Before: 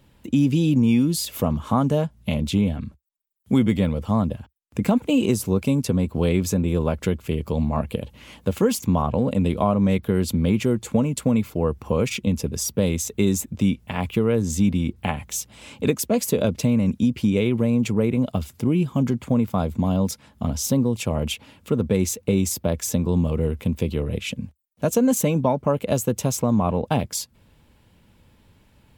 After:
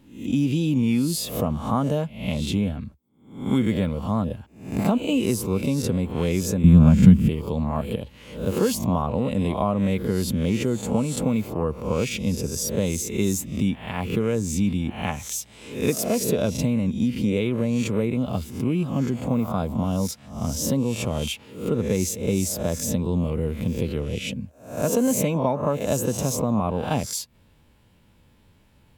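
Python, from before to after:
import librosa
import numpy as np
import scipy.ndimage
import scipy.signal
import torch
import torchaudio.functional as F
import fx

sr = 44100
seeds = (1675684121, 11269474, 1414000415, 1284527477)

y = fx.spec_swells(x, sr, rise_s=0.51)
y = fx.low_shelf_res(y, sr, hz=290.0, db=11.0, q=3.0, at=(6.64, 7.29))
y = y * 10.0 ** (-3.5 / 20.0)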